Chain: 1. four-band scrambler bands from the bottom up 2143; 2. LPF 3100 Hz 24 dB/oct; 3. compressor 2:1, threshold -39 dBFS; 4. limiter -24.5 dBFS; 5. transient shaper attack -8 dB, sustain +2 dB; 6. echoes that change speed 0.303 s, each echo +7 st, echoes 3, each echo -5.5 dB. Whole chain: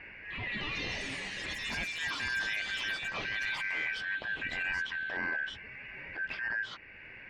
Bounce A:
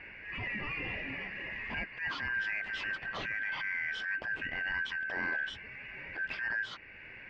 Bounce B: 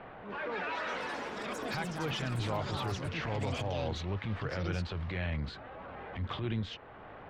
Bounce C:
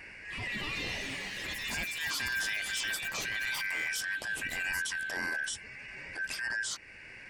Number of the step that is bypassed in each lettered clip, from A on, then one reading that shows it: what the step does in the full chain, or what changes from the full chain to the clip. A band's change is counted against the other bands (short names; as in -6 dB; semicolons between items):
6, crest factor change -1.5 dB; 1, 2 kHz band -17.5 dB; 2, 8 kHz band +12.0 dB